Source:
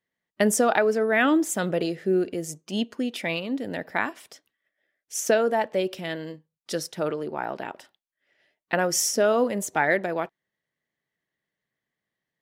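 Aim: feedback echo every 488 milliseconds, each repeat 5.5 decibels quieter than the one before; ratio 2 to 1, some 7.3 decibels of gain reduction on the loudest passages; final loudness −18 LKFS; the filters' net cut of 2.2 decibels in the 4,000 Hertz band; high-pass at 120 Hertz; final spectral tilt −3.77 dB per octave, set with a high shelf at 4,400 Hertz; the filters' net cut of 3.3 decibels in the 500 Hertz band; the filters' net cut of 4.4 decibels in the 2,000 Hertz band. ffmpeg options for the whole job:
ffmpeg -i in.wav -af "highpass=120,equalizer=frequency=500:width_type=o:gain=-4,equalizer=frequency=2000:width_type=o:gain=-5,equalizer=frequency=4000:width_type=o:gain=-7.5,highshelf=frequency=4400:gain=7,acompressor=threshold=-32dB:ratio=2,aecho=1:1:488|976|1464|1952|2440|2928|3416:0.531|0.281|0.149|0.079|0.0419|0.0222|0.0118,volume=14dB" out.wav

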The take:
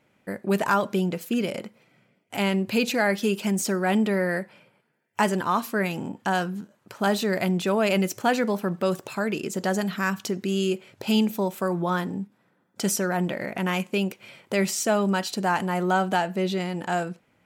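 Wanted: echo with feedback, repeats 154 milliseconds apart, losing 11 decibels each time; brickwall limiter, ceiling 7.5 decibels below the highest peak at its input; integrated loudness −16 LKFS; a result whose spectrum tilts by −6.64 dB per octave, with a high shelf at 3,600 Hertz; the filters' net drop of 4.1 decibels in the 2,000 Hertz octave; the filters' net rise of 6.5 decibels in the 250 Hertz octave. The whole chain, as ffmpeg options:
ffmpeg -i in.wav -af "equalizer=frequency=250:width_type=o:gain=9,equalizer=frequency=2000:width_type=o:gain=-4.5,highshelf=frequency=3600:gain=-4.5,alimiter=limit=-14.5dB:level=0:latency=1,aecho=1:1:154|308|462:0.282|0.0789|0.0221,volume=8dB" out.wav

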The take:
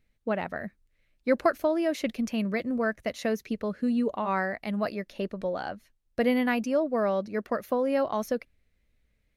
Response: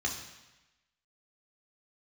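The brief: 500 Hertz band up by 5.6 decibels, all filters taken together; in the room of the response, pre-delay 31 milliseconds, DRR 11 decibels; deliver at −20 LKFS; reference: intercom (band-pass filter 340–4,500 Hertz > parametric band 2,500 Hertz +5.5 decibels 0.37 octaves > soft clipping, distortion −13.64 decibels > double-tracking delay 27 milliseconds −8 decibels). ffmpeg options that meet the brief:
-filter_complex "[0:a]equalizer=frequency=500:width_type=o:gain=7.5,asplit=2[link_01][link_02];[1:a]atrim=start_sample=2205,adelay=31[link_03];[link_02][link_03]afir=irnorm=-1:irlink=0,volume=-16.5dB[link_04];[link_01][link_04]amix=inputs=2:normalize=0,highpass=340,lowpass=4500,equalizer=frequency=2500:width_type=o:width=0.37:gain=5.5,asoftclip=threshold=-18dB,asplit=2[link_05][link_06];[link_06]adelay=27,volume=-8dB[link_07];[link_05][link_07]amix=inputs=2:normalize=0,volume=7.5dB"

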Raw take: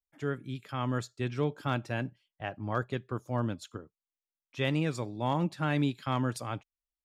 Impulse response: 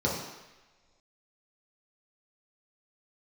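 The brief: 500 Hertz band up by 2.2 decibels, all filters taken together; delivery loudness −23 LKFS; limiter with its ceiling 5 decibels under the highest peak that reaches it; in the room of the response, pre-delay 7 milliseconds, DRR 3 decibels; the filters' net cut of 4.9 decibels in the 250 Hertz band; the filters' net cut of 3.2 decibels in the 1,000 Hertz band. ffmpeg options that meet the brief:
-filter_complex "[0:a]equalizer=frequency=250:width_type=o:gain=-8.5,equalizer=frequency=500:width_type=o:gain=6.5,equalizer=frequency=1000:width_type=o:gain=-6,alimiter=limit=-23dB:level=0:latency=1,asplit=2[link_01][link_02];[1:a]atrim=start_sample=2205,adelay=7[link_03];[link_02][link_03]afir=irnorm=-1:irlink=0,volume=-14dB[link_04];[link_01][link_04]amix=inputs=2:normalize=0,volume=9dB"

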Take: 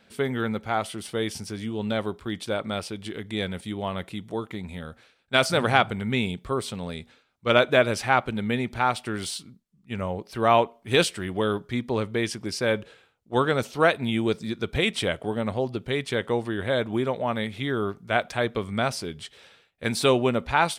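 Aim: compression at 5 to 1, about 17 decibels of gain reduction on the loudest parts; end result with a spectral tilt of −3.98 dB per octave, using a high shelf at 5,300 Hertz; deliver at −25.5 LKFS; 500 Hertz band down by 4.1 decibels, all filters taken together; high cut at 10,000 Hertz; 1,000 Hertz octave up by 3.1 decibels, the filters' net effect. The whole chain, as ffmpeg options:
ffmpeg -i in.wav -af "lowpass=10000,equalizer=frequency=500:width_type=o:gain=-7.5,equalizer=frequency=1000:width_type=o:gain=7,highshelf=frequency=5300:gain=-7,acompressor=threshold=-33dB:ratio=5,volume=12dB" out.wav

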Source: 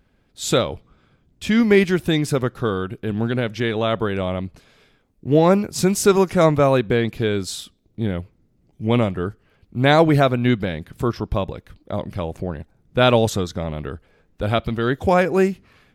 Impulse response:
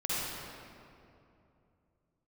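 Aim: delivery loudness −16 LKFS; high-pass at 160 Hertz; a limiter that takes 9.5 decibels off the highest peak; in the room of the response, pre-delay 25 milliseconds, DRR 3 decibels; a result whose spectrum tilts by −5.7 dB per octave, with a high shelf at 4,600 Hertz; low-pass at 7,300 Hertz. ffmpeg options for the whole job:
-filter_complex "[0:a]highpass=160,lowpass=7300,highshelf=frequency=4600:gain=-7.5,alimiter=limit=-11.5dB:level=0:latency=1,asplit=2[link_01][link_02];[1:a]atrim=start_sample=2205,adelay=25[link_03];[link_02][link_03]afir=irnorm=-1:irlink=0,volume=-10.5dB[link_04];[link_01][link_04]amix=inputs=2:normalize=0,volume=7dB"

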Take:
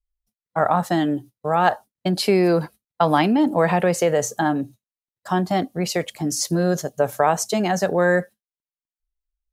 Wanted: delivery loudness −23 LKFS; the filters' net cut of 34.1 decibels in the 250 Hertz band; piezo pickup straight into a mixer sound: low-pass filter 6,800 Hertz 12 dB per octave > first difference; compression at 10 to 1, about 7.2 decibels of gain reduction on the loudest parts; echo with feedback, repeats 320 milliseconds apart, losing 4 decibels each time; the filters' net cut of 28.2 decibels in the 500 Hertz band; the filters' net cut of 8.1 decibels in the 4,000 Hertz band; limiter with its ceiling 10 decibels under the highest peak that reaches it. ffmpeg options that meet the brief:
ffmpeg -i in.wav -af "equalizer=frequency=250:width_type=o:gain=-6,equalizer=frequency=500:width_type=o:gain=-6,equalizer=frequency=4000:width_type=o:gain=-3.5,acompressor=threshold=-22dB:ratio=10,alimiter=limit=-19.5dB:level=0:latency=1,lowpass=6800,aderivative,aecho=1:1:320|640|960|1280|1600|1920|2240|2560|2880:0.631|0.398|0.25|0.158|0.0994|0.0626|0.0394|0.0249|0.0157,volume=17.5dB" out.wav

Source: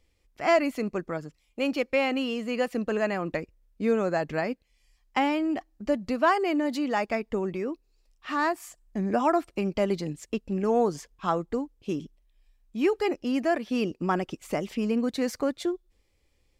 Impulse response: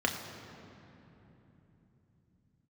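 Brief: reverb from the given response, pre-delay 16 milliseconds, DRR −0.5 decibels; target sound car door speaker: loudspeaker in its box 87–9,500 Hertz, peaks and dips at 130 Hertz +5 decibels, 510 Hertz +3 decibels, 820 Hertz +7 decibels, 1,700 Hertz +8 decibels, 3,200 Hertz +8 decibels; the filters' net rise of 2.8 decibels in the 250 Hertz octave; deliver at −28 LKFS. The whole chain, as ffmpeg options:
-filter_complex "[0:a]equalizer=frequency=250:width_type=o:gain=3,asplit=2[link_01][link_02];[1:a]atrim=start_sample=2205,adelay=16[link_03];[link_02][link_03]afir=irnorm=-1:irlink=0,volume=-8.5dB[link_04];[link_01][link_04]amix=inputs=2:normalize=0,highpass=87,equalizer=frequency=130:width_type=q:width=4:gain=5,equalizer=frequency=510:width_type=q:width=4:gain=3,equalizer=frequency=820:width_type=q:width=4:gain=7,equalizer=frequency=1700:width_type=q:width=4:gain=8,equalizer=frequency=3200:width_type=q:width=4:gain=8,lowpass=frequency=9500:width=0.5412,lowpass=frequency=9500:width=1.3066,volume=-7dB"

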